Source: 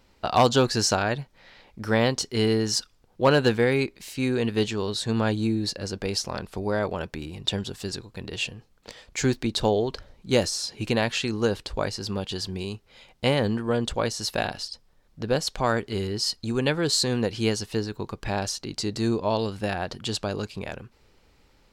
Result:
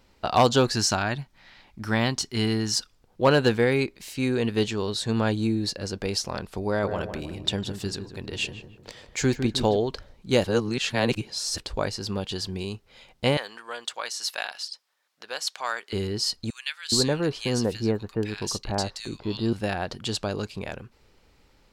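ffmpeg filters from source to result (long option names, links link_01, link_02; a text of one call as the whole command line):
ffmpeg -i in.wav -filter_complex "[0:a]asettb=1/sr,asplit=3[link_01][link_02][link_03];[link_01]atrim=end=0.754[link_04];[link_02]atrim=start=0.75:end=2.78,asetpts=PTS-STARTPTS,afade=type=in:duration=0.004:curve=qsin,afade=type=out:start_time=2.026:duration=0.004:curve=qsin,equalizer=frequency=490:width_type=o:width=0.49:gain=-11.5[link_05];[link_03]atrim=start=2.776[link_06];[link_04][link_05]acrossfade=duration=0.004:curve1=hsin:curve2=qsin[link_07];[link_07][link_06]acrossfade=duration=0.004:curve1=qsin:curve2=hsin,asettb=1/sr,asplit=3[link_08][link_09][link_10];[link_08]atrim=end=6.684[link_11];[link_09]atrim=start=6.68:end=9.77,asetpts=PTS-STARTPTS,afade=type=in:duration=0.004:curve=qsin,afade=type=out:start_time=3.086:duration=0.004:curve=qsin,asplit=2[link_12][link_13];[link_13]adelay=154,lowpass=frequency=1100:poles=1,volume=-7dB,asplit=2[link_14][link_15];[link_15]adelay=154,lowpass=frequency=1100:poles=1,volume=0.5,asplit=2[link_16][link_17];[link_17]adelay=154,lowpass=frequency=1100:poles=1,volume=0.5,asplit=2[link_18][link_19];[link_19]adelay=154,lowpass=frequency=1100:poles=1,volume=0.5,asplit=2[link_20][link_21];[link_21]adelay=154,lowpass=frequency=1100:poles=1,volume=0.5,asplit=2[link_22][link_23];[link_23]adelay=154,lowpass=frequency=1100:poles=1,volume=0.5[link_24];[link_12][link_14][link_16][link_18][link_20][link_22][link_24]amix=inputs=7:normalize=0,atrim=end_sample=136269[link_25];[link_10]atrim=start=9.766[link_26];[link_11][link_25]acrossfade=duration=0.004:curve1=hsin:curve2=qsin[link_27];[link_27][link_26]acrossfade=duration=0.004:curve1=qsin:curve2=hsin,asettb=1/sr,asplit=3[link_28][link_29][link_30];[link_28]atrim=end=13.374[link_31];[link_29]atrim=start=13.37:end=15.93,asetpts=PTS-STARTPTS,afade=type=in:duration=0.004:curve=qsin,afade=type=out:start_time=2.556:duration=0.004:curve=qsin,highpass=1100[link_32];[link_30]atrim=start=15.926[link_33];[link_31][link_32]acrossfade=duration=0.004:curve1=hsin:curve2=qsin[link_34];[link_34][link_33]acrossfade=duration=0.004:curve1=qsin:curve2=hsin,asettb=1/sr,asplit=3[link_35][link_36][link_37];[link_35]atrim=end=16.504[link_38];[link_36]atrim=start=16.5:end=19.53,asetpts=PTS-STARTPTS,afade=type=in:duration=0.004:curve=qsin,afade=type=out:start_time=3.026:duration=0.004:curve=qsin,acrossover=split=1700[link_39][link_40];[link_39]adelay=420[link_41];[link_41][link_40]amix=inputs=2:normalize=0,atrim=end_sample=133623[link_42];[link_37]atrim=start=19.526[link_43];[link_38][link_42]acrossfade=duration=0.004:curve1=hsin:curve2=qsin[link_44];[link_44][link_43]acrossfade=duration=0.004:curve1=qsin:curve2=hsin,asplit=3[link_45][link_46][link_47];[link_45]atrim=end=10.442[link_48];[link_46]atrim=start=10.438:end=11.582,asetpts=PTS-STARTPTS,areverse[link_49];[link_47]atrim=start=11.578[link_50];[link_48][link_49]acrossfade=duration=0.004:curve1=hsin:curve2=hsin[link_51];[link_51][link_50]acrossfade=duration=0.004:curve1=hsin:curve2=hsin" out.wav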